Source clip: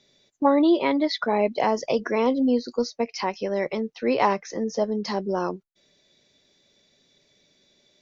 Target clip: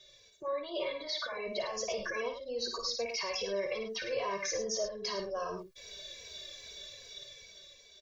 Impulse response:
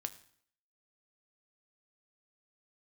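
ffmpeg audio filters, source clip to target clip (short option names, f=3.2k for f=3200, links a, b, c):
-filter_complex "[0:a]equalizer=f=640:t=o:w=2.9:g=-6,dynaudnorm=f=390:g=7:m=12dB,alimiter=level_in=7.5dB:limit=-24dB:level=0:latency=1:release=52,volume=-7.5dB,equalizer=f=170:t=o:w=1.1:g=-14.5,aecho=1:1:1.8:0.88,aecho=1:1:55.39|105:0.447|0.355,asplit=2[a][b];[b]adelay=2.8,afreqshift=-2.5[c];[a][c]amix=inputs=2:normalize=1,volume=5.5dB"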